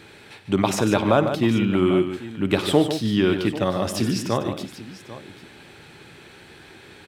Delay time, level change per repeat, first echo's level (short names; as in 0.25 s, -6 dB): 54 ms, no steady repeat, -16.5 dB